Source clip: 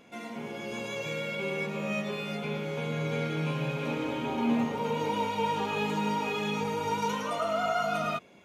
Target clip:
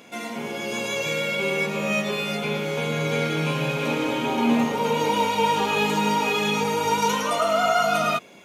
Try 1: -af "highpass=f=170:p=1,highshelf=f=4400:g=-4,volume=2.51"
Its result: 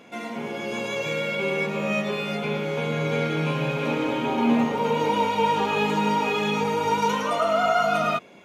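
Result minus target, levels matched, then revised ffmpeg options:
8 kHz band -7.5 dB
-af "highpass=f=170:p=1,highshelf=f=4400:g=7.5,volume=2.51"

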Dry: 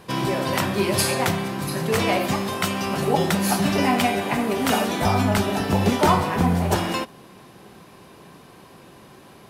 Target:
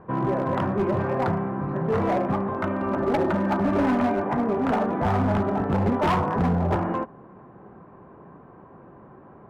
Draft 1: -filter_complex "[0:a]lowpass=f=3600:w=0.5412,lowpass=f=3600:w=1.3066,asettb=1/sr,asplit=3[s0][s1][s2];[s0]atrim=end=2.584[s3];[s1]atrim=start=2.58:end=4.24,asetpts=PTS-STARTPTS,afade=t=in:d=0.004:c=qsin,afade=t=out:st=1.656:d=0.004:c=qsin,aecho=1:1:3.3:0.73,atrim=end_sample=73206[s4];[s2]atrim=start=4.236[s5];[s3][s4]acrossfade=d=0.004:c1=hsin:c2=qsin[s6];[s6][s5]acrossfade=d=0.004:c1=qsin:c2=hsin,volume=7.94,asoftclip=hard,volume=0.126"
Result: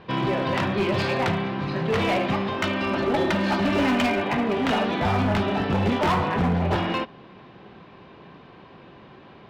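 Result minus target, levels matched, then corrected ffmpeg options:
4 kHz band +13.0 dB
-filter_complex "[0:a]lowpass=f=1400:w=0.5412,lowpass=f=1400:w=1.3066,asettb=1/sr,asplit=3[s0][s1][s2];[s0]atrim=end=2.584[s3];[s1]atrim=start=2.58:end=4.24,asetpts=PTS-STARTPTS,afade=t=in:d=0.004:c=qsin,afade=t=out:st=1.656:d=0.004:c=qsin,aecho=1:1:3.3:0.73,atrim=end_sample=73206[s4];[s2]atrim=start=4.236[s5];[s3][s4]acrossfade=d=0.004:c1=hsin:c2=qsin[s6];[s6][s5]acrossfade=d=0.004:c1=qsin:c2=hsin,volume=7.94,asoftclip=hard,volume=0.126"

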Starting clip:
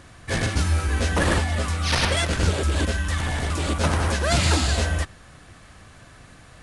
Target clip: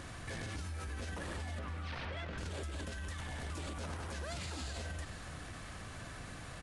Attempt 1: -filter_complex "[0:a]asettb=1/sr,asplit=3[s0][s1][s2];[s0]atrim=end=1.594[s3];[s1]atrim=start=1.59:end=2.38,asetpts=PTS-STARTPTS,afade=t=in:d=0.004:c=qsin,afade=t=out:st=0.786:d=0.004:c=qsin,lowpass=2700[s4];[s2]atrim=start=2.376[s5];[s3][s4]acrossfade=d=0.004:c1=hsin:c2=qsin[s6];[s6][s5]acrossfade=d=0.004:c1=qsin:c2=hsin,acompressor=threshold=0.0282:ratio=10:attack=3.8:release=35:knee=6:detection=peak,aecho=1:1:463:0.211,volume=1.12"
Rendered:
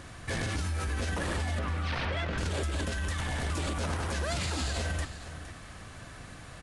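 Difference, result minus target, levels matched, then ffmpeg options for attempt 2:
compression: peak gain reduction -10 dB
-filter_complex "[0:a]asettb=1/sr,asplit=3[s0][s1][s2];[s0]atrim=end=1.594[s3];[s1]atrim=start=1.59:end=2.38,asetpts=PTS-STARTPTS,afade=t=in:d=0.004:c=qsin,afade=t=out:st=0.786:d=0.004:c=qsin,lowpass=2700[s4];[s2]atrim=start=2.376[s5];[s3][s4]acrossfade=d=0.004:c1=hsin:c2=qsin[s6];[s6][s5]acrossfade=d=0.004:c1=qsin:c2=hsin,acompressor=threshold=0.00794:ratio=10:attack=3.8:release=35:knee=6:detection=peak,aecho=1:1:463:0.211,volume=1.12"

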